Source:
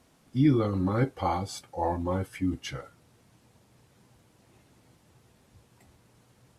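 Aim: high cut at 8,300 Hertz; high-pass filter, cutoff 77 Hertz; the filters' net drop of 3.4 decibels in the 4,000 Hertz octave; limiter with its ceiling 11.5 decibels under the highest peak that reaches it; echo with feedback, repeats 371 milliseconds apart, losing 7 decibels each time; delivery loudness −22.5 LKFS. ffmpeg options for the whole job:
ffmpeg -i in.wav -af "highpass=77,lowpass=8300,equalizer=frequency=4000:width_type=o:gain=-4.5,alimiter=limit=-24dB:level=0:latency=1,aecho=1:1:371|742|1113|1484|1855:0.447|0.201|0.0905|0.0407|0.0183,volume=12dB" out.wav

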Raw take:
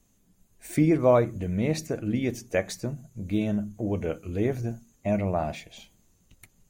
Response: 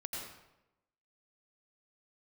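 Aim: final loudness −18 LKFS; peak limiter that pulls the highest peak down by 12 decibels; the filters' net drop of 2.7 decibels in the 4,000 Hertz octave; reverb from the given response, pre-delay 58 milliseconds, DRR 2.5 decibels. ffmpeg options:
-filter_complex "[0:a]equalizer=frequency=4000:width_type=o:gain=-3.5,alimiter=limit=-21dB:level=0:latency=1,asplit=2[link_01][link_02];[1:a]atrim=start_sample=2205,adelay=58[link_03];[link_02][link_03]afir=irnorm=-1:irlink=0,volume=-3dB[link_04];[link_01][link_04]amix=inputs=2:normalize=0,volume=11.5dB"

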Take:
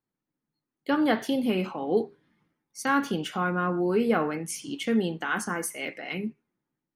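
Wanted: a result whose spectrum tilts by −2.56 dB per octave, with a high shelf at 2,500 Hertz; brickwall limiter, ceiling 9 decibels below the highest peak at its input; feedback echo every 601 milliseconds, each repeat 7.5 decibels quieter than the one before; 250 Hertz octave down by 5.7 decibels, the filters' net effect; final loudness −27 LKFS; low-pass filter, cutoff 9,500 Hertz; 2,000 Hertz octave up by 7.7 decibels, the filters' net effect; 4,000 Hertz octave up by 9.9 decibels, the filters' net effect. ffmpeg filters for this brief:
ffmpeg -i in.wav -af "lowpass=9500,equalizer=frequency=250:width_type=o:gain=-7.5,equalizer=frequency=2000:width_type=o:gain=7,highshelf=frequency=2500:gain=5,equalizer=frequency=4000:width_type=o:gain=6.5,alimiter=limit=-15dB:level=0:latency=1,aecho=1:1:601|1202|1803|2404|3005:0.422|0.177|0.0744|0.0312|0.0131,volume=0.5dB" out.wav

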